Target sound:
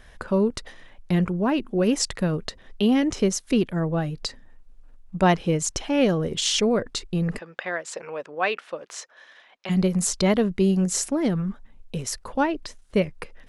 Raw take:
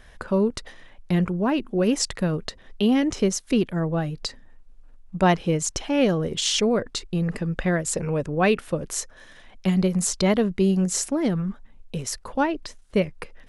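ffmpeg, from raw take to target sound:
-filter_complex "[0:a]asplit=3[s0][s1][s2];[s0]afade=t=out:st=7.38:d=0.02[s3];[s1]highpass=650,lowpass=4500,afade=t=in:st=7.38:d=0.02,afade=t=out:st=9.69:d=0.02[s4];[s2]afade=t=in:st=9.69:d=0.02[s5];[s3][s4][s5]amix=inputs=3:normalize=0"

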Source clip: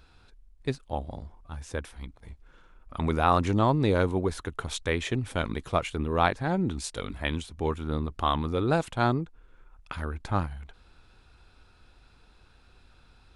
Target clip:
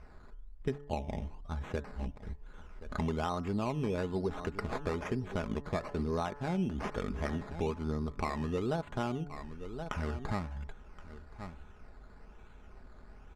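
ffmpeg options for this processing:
-filter_complex "[0:a]acrusher=samples=12:mix=1:aa=0.000001:lfo=1:lforange=7.2:lforate=1.1,bandreject=f=143.8:t=h:w=4,bandreject=f=287.6:t=h:w=4,bandreject=f=431.4:t=h:w=4,bandreject=f=575.2:t=h:w=4,bandreject=f=719:t=h:w=4,bandreject=f=862.8:t=h:w=4,bandreject=f=1006.6:t=h:w=4,bandreject=f=1150.4:t=h:w=4,bandreject=f=1294.2:t=h:w=4,bandreject=f=1438:t=h:w=4,bandreject=f=1581.8:t=h:w=4,bandreject=f=1725.6:t=h:w=4,bandreject=f=1869.4:t=h:w=4,asplit=2[s0][s1];[s1]aecho=0:1:1073:0.0944[s2];[s0][s2]amix=inputs=2:normalize=0,acompressor=threshold=0.02:ratio=6,lowpass=7600,highshelf=f=2300:g=-11.5,aecho=1:1:4.8:0.38,volume=1.58"

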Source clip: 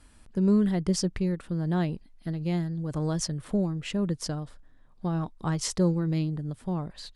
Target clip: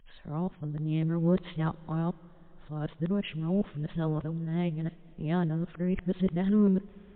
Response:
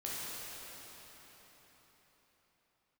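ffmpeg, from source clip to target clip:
-filter_complex "[0:a]areverse,asplit=2[s0][s1];[1:a]atrim=start_sample=2205,lowpass=7200,highshelf=f=3100:g=9[s2];[s1][s2]afir=irnorm=-1:irlink=0,volume=0.0596[s3];[s0][s3]amix=inputs=2:normalize=0,volume=0.841" -ar 8000 -c:a libmp3lame -b:a 40k

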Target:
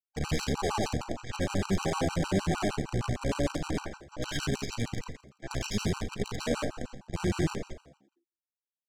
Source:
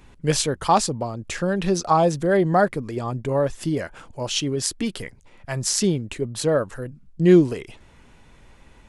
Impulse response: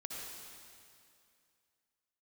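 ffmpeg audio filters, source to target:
-filter_complex "[0:a]afftfilt=real='re':imag='-im':win_size=8192:overlap=0.75,agate=range=0.0708:threshold=0.00794:ratio=16:detection=peak,lowpass=4300,lowshelf=f=120:g=6.5,acontrast=24,alimiter=limit=0.211:level=0:latency=1:release=15,asplit=3[s0][s1][s2];[s1]asetrate=22050,aresample=44100,atempo=2,volume=1[s3];[s2]asetrate=52444,aresample=44100,atempo=0.840896,volume=0.126[s4];[s0][s3][s4]amix=inputs=3:normalize=0,aresample=16000,acrusher=bits=4:dc=4:mix=0:aa=0.000001,aresample=44100,asoftclip=type=tanh:threshold=0.158,asplit=2[s5][s6];[s6]adelay=42,volume=0.251[s7];[s5][s7]amix=inputs=2:normalize=0,asplit=2[s8][s9];[s9]asplit=5[s10][s11][s12][s13][s14];[s10]adelay=84,afreqshift=68,volume=0.15[s15];[s11]adelay=168,afreqshift=136,volume=0.0871[s16];[s12]adelay=252,afreqshift=204,volume=0.0501[s17];[s13]adelay=336,afreqshift=272,volume=0.0292[s18];[s14]adelay=420,afreqshift=340,volume=0.017[s19];[s15][s16][s17][s18][s19]amix=inputs=5:normalize=0[s20];[s8][s20]amix=inputs=2:normalize=0,afftfilt=real='re*gt(sin(2*PI*6.5*pts/sr)*(1-2*mod(floor(b*sr/1024/780),2)),0)':imag='im*gt(sin(2*PI*6.5*pts/sr)*(1-2*mod(floor(b*sr/1024/780),2)),0)':win_size=1024:overlap=0.75,volume=0.562"

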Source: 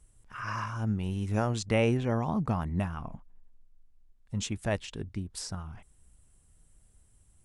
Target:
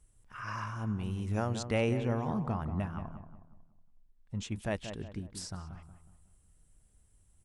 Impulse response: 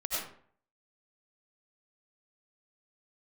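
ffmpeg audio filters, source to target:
-filter_complex "[0:a]asettb=1/sr,asplit=3[s0][s1][s2];[s0]atrim=end=2.414[s3];[s1]atrim=start=2.41:end=4.51,asetpts=PTS-STARTPTS,afade=t=in:d=0.004:c=qsin,afade=t=out:st=2.096:d=0.004:c=qsin,highshelf=f=4400:g=-8[s4];[s2]atrim=start=4.506[s5];[s3][s4]acrossfade=d=0.004:c1=hsin:c2=qsin[s6];[s6][s5]acrossfade=d=0.004:c1=qsin:c2=hsin,asplit=2[s7][s8];[s8]adelay=183,lowpass=f=1700:p=1,volume=0.355,asplit=2[s9][s10];[s10]adelay=183,lowpass=f=1700:p=1,volume=0.41,asplit=2[s11][s12];[s12]adelay=183,lowpass=f=1700:p=1,volume=0.41,asplit=2[s13][s14];[s14]adelay=183,lowpass=f=1700:p=1,volume=0.41,asplit=2[s15][s16];[s16]adelay=183,lowpass=f=1700:p=1,volume=0.41[s17];[s7][s9][s11][s13][s15][s17]amix=inputs=6:normalize=0,volume=0.631"

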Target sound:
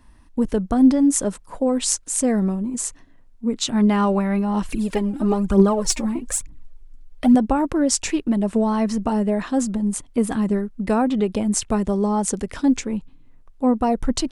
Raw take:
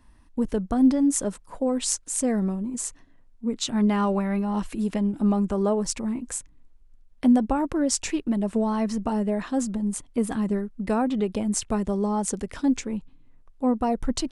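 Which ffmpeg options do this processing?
-filter_complex "[0:a]asettb=1/sr,asplit=3[s0][s1][s2];[s0]atrim=end=4.694[s3];[s1]atrim=start=4.69:end=7.35,asetpts=PTS-STARTPTS,afade=t=in:d=0.004:c=qsin,afade=t=out:st=2.656:d=0.004:c=qsin,aphaser=in_gain=1:out_gain=1:delay=3.9:decay=0.68:speed=1.1:type=triangular[s4];[s2]atrim=start=7.346[s5];[s3][s4]acrossfade=d=0.004:c1=hsin:c2=qsin[s6];[s6][s5]acrossfade=d=0.004:c1=qsin:c2=hsin,volume=1.68"

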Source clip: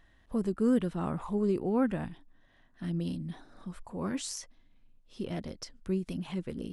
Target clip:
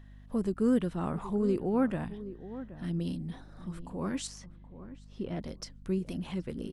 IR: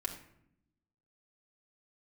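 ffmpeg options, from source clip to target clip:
-filter_complex "[0:a]asettb=1/sr,asplit=3[s0][s1][s2];[s0]atrim=end=4.274[s3];[s1]atrim=start=4.27:end=5.4,asetpts=PTS-STARTPTS,afade=t=in:d=0.004:c=qsin,afade=t=out:st=1.126:d=0.004:c=qsin,aemphasis=mode=reproduction:type=75kf[s4];[s2]atrim=start=5.396[s5];[s3][s4]acrossfade=d=0.004:c1=hsin:c2=qsin[s6];[s6][s5]acrossfade=d=0.004:c1=qsin:c2=hsin,aeval=exprs='val(0)+0.00316*(sin(2*PI*50*n/s)+sin(2*PI*2*50*n/s)/2+sin(2*PI*3*50*n/s)/3+sin(2*PI*4*50*n/s)/4+sin(2*PI*5*50*n/s)/5)':c=same,asplit=2[s7][s8];[s8]adelay=774,lowpass=f=1100:p=1,volume=0.211,asplit=2[s9][s10];[s10]adelay=774,lowpass=f=1100:p=1,volume=0.16[s11];[s7][s9][s11]amix=inputs=3:normalize=0"

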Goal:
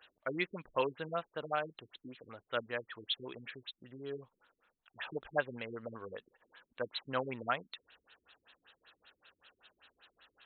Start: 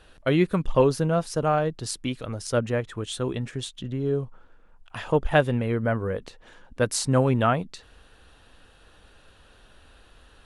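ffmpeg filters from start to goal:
-af "aderivative,afftfilt=real='re*lt(b*sr/1024,380*pow(4300/380,0.5+0.5*sin(2*PI*5.2*pts/sr)))':imag='im*lt(b*sr/1024,380*pow(4300/380,0.5+0.5*sin(2*PI*5.2*pts/sr)))':win_size=1024:overlap=0.75,volume=2.82"

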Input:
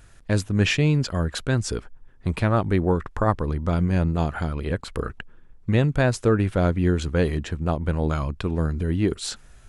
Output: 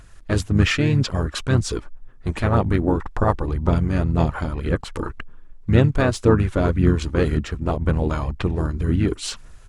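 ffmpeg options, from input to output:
-filter_complex "[0:a]asplit=3[s0][s1][s2];[s1]asetrate=29433,aresample=44100,atempo=1.49831,volume=0.178[s3];[s2]asetrate=33038,aresample=44100,atempo=1.33484,volume=0.562[s4];[s0][s3][s4]amix=inputs=3:normalize=0,aphaser=in_gain=1:out_gain=1:delay=3.5:decay=0.33:speed=1.9:type=sinusoidal"

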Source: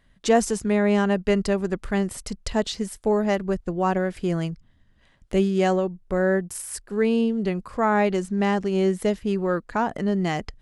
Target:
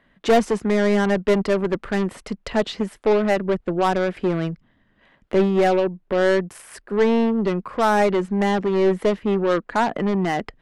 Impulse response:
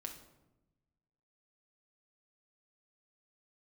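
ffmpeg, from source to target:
-filter_complex "[0:a]acrossover=split=170 3200:gain=0.178 1 0.126[s0][s1][s2];[s0][s1][s2]amix=inputs=3:normalize=0,asoftclip=type=tanh:threshold=0.119,aeval=exprs='0.119*(cos(1*acos(clip(val(0)/0.119,-1,1)))-cos(1*PI/2))+0.0188*(cos(4*acos(clip(val(0)/0.119,-1,1)))-cos(4*PI/2))+0.0211*(cos(6*acos(clip(val(0)/0.119,-1,1)))-cos(6*PI/2))+0.00531*(cos(8*acos(clip(val(0)/0.119,-1,1)))-cos(8*PI/2))':c=same,volume=2.24"

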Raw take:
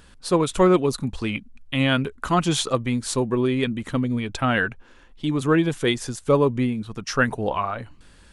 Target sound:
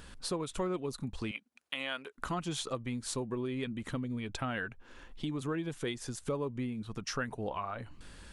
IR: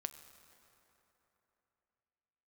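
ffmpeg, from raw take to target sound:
-filter_complex "[0:a]asettb=1/sr,asplit=3[s0][s1][s2];[s0]atrim=end=1.314[s3];[s1]atrim=start=1.31:end=2.18,asetpts=PTS-STARTPTS,afade=t=in:d=0.004:c=qsin,afade=t=out:st=0.866:d=0.004:c=qsin,highpass=570[s4];[s2]atrim=start=2.176[s5];[s3][s4]acrossfade=d=0.004:c1=hsin:c2=qsin[s6];[s6][s5]acrossfade=d=0.004:c1=qsin:c2=hsin,acompressor=threshold=0.0126:ratio=3"

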